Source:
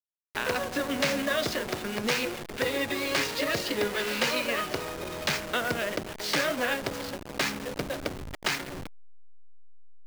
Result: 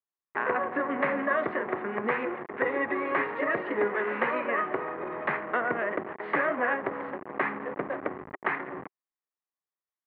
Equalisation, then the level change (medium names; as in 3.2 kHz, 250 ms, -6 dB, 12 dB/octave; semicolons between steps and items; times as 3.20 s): distance through air 330 m; cabinet simulation 210–2100 Hz, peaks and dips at 380 Hz +5 dB, 780 Hz +4 dB, 1.1 kHz +9 dB, 1.9 kHz +8 dB; 0.0 dB